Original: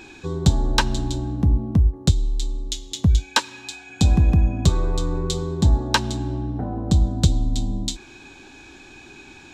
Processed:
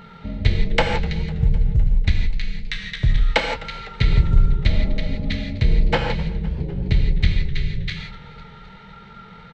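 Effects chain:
pitch shifter −10.5 semitones
reverb whose tail is shaped and stops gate 190 ms flat, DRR 2.5 dB
feedback echo with a swinging delay time 253 ms, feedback 64%, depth 131 cents, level −19.5 dB

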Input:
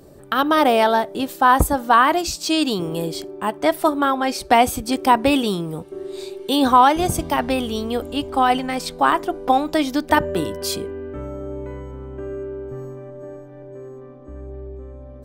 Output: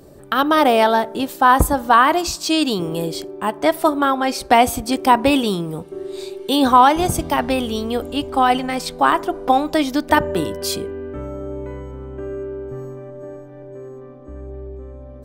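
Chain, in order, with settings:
on a send: low-pass filter 1,400 Hz + convolution reverb RT60 0.90 s, pre-delay 40 ms, DRR 24 dB
on the sum: level +1.5 dB

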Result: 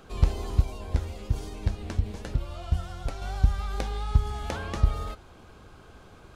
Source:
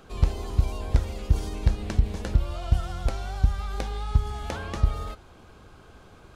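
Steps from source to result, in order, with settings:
0:00.62–0:03.22: flanger 1.2 Hz, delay 6.6 ms, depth 6.4 ms, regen +48%

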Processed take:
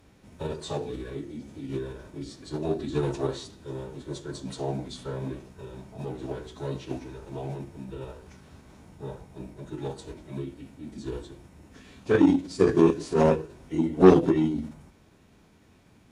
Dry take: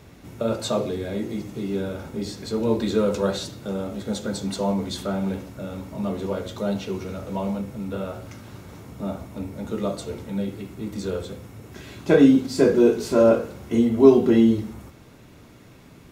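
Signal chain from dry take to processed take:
hum removal 56.29 Hz, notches 4
dynamic equaliser 380 Hz, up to +6 dB, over −34 dBFS, Q 4.6
soft clipping −1 dBFS, distortion −22 dB
phase-vocoder pitch shift with formants kept −6.5 semitones
harmonic generator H 7 −24 dB, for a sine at 0.5 dBFS
level −3 dB

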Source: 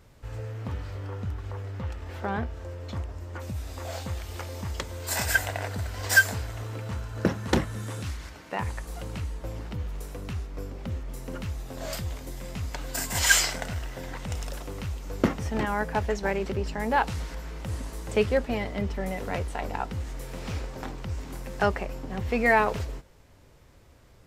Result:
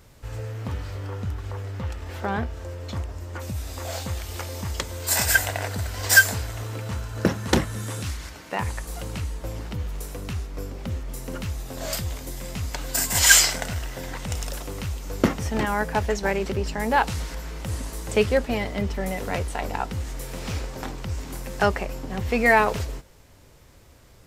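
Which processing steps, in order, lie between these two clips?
high-shelf EQ 4,200 Hz +6.5 dB
level +3 dB

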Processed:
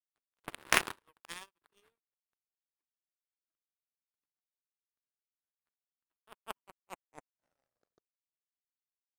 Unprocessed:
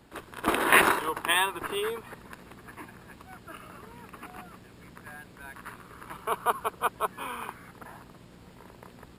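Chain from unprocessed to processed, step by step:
turntable brake at the end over 2.88 s
power curve on the samples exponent 3
level +2.5 dB

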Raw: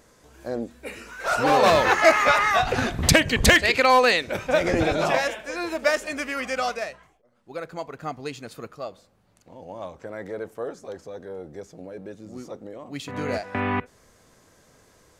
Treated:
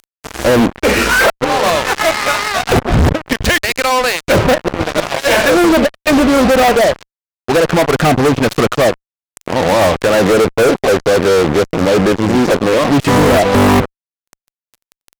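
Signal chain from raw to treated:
gate with flip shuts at −13 dBFS, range −26 dB
treble cut that deepens with the level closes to 670 Hz, closed at −28.5 dBFS
fuzz pedal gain 47 dB, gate −46 dBFS
level +5.5 dB

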